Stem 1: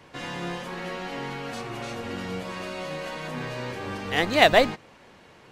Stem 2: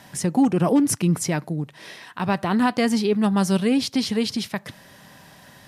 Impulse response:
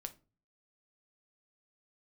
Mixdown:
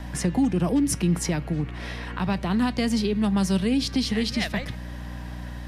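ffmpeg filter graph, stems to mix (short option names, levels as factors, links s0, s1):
-filter_complex "[0:a]equalizer=f=1900:w=1.3:g=10,volume=0.282[s0];[1:a]acrossover=split=220|3000[s1][s2][s3];[s1]acompressor=threshold=0.0224:ratio=6[s4];[s4][s2][s3]amix=inputs=3:normalize=0,volume=1.26,asplit=2[s5][s6];[s6]volume=0.596[s7];[2:a]atrim=start_sample=2205[s8];[s7][s8]afir=irnorm=-1:irlink=0[s9];[s0][s5][s9]amix=inputs=3:normalize=0,highshelf=f=4800:g=-10.5,aeval=exprs='val(0)+0.02*(sin(2*PI*60*n/s)+sin(2*PI*2*60*n/s)/2+sin(2*PI*3*60*n/s)/3+sin(2*PI*4*60*n/s)/4+sin(2*PI*5*60*n/s)/5)':c=same,acrossover=split=220|3000[s10][s11][s12];[s11]acompressor=threshold=0.0251:ratio=3[s13];[s10][s13][s12]amix=inputs=3:normalize=0"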